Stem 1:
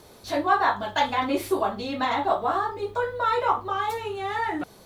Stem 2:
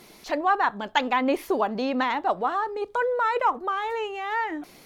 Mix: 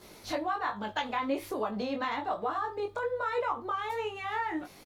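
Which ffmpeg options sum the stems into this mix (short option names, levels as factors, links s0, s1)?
-filter_complex "[0:a]volume=0.75[s0];[1:a]acompressor=threshold=0.0447:ratio=3,adelay=13,volume=0.944,asplit=2[s1][s2];[s2]apad=whole_len=213902[s3];[s0][s3]sidechaincompress=threshold=0.02:ratio=8:attack=29:release=966[s4];[s4][s1]amix=inputs=2:normalize=0,flanger=delay=18.5:depth=3.8:speed=1.2"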